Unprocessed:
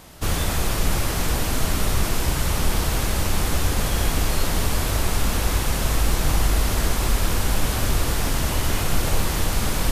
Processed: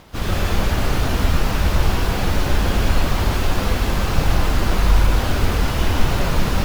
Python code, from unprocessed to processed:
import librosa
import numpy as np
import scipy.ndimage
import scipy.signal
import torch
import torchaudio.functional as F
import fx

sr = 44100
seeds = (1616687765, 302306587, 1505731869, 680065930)

y = scipy.signal.medfilt(x, 5)
y = fx.rev_plate(y, sr, seeds[0], rt60_s=2.3, hf_ratio=0.7, predelay_ms=110, drr_db=-2.0)
y = fx.stretch_vocoder_free(y, sr, factor=0.67)
y = y * 10.0 ** (3.0 / 20.0)